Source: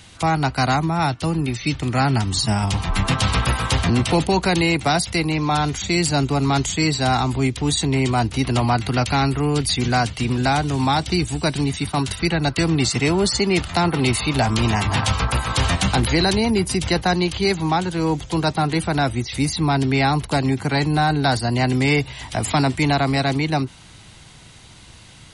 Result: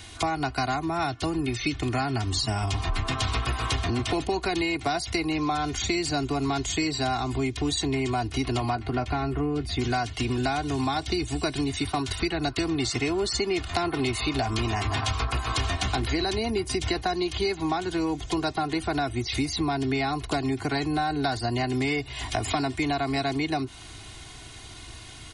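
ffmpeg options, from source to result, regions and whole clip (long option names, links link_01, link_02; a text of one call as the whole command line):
ffmpeg -i in.wav -filter_complex "[0:a]asettb=1/sr,asplit=3[link_01][link_02][link_03];[link_01]atrim=end=8.754[link_04];[link_02]atrim=start=8.75:end=9.79,asetpts=PTS-STARTPTS,afade=type=in:duration=0.004:curve=qsin,afade=type=out:start_time=1.036:duration=0.004:curve=qsin,lowpass=frequency=1200:poles=1,asplit=2[link_05][link_06];[link_06]adelay=13,volume=-11.5dB[link_07];[link_05][link_07]amix=inputs=2:normalize=0,atrim=end_sample=45864[link_08];[link_03]atrim=start=9.786[link_09];[link_04][link_08]acrossfade=duration=0.004:curve1=hsin:curve2=qsin[link_10];[link_10][link_09]acrossfade=duration=0.004:curve1=qsin:curve2=hsin,acrossover=split=8300[link_11][link_12];[link_12]acompressor=threshold=-49dB:ratio=4:attack=1:release=60[link_13];[link_11][link_13]amix=inputs=2:normalize=0,aecho=1:1:2.8:0.68,acompressor=threshold=-24dB:ratio=6" out.wav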